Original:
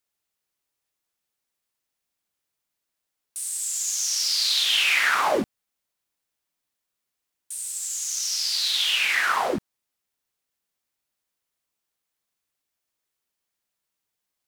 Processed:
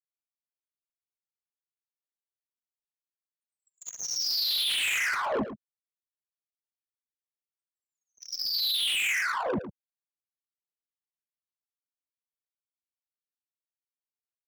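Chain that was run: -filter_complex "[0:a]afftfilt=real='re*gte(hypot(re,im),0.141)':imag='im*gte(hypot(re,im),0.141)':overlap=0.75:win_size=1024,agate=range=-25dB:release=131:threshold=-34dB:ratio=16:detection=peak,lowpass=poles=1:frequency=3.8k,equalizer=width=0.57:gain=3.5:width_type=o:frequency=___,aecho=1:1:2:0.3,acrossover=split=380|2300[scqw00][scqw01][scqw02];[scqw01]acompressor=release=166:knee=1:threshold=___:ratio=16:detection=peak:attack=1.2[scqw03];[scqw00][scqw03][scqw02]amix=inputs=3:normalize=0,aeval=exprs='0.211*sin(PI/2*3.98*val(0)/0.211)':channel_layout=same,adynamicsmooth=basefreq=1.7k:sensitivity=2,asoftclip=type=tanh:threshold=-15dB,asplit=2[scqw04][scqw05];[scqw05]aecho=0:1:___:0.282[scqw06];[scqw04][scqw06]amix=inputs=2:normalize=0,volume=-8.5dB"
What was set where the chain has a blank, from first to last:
500, -33dB, 110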